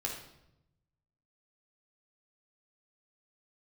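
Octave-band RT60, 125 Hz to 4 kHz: 1.5 s, 1.1 s, 0.90 s, 0.75 s, 0.70 s, 0.65 s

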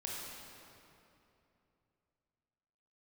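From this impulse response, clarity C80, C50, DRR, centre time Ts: -0.5 dB, -2.0 dB, -4.0 dB, 154 ms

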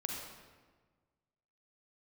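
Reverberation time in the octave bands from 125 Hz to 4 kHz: 1.8 s, 1.7 s, 1.5 s, 1.4 s, 1.2 s, 1.0 s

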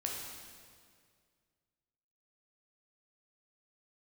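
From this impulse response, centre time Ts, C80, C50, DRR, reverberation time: 84 ms, 3.0 dB, 1.0 dB, -1.5 dB, 2.0 s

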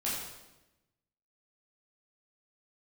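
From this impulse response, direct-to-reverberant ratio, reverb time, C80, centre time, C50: -8.0 dB, 1.0 s, 3.5 dB, 66 ms, 1.0 dB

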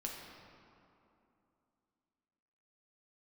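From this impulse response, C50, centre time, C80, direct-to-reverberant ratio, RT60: 1.5 dB, 95 ms, 3.0 dB, -1.5 dB, 2.8 s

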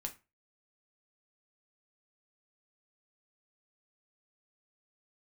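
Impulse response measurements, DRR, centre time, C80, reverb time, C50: 3.0 dB, 8 ms, 22.0 dB, 0.25 s, 15.0 dB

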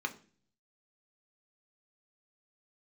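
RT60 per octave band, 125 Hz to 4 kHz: 0.85 s, 0.70 s, 0.50 s, 0.35 s, 0.40 s, 0.45 s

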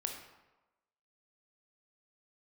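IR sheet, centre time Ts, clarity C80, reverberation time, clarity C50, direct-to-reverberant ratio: 32 ms, 7.5 dB, 1.1 s, 5.0 dB, 2.5 dB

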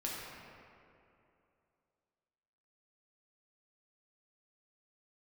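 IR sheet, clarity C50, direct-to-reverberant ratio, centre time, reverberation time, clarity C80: -1.5 dB, -5.0 dB, 140 ms, 2.7 s, 0.0 dB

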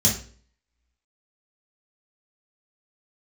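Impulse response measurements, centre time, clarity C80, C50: 27 ms, 12.5 dB, 7.0 dB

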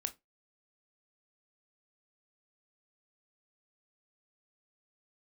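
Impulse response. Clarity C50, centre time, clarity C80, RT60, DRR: 19.5 dB, 6 ms, 29.5 dB, 0.20 s, 8.0 dB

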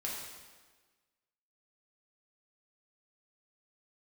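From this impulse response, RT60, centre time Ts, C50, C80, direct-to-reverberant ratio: 1.4 s, 74 ms, 1.0 dB, 3.0 dB, -5.0 dB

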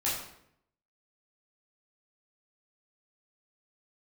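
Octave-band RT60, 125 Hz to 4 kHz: 0.90 s, 0.85 s, 0.75 s, 0.65 s, 0.65 s, 0.55 s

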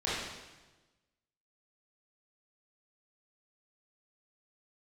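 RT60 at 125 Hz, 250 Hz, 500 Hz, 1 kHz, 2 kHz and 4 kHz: 1.4 s, 1.3 s, 1.2 s, 1.1 s, 1.1 s, 1.1 s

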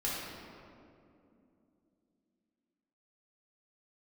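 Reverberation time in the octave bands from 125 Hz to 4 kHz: 3.3 s, 4.2 s, 3.1 s, 2.2 s, 1.7 s, 1.3 s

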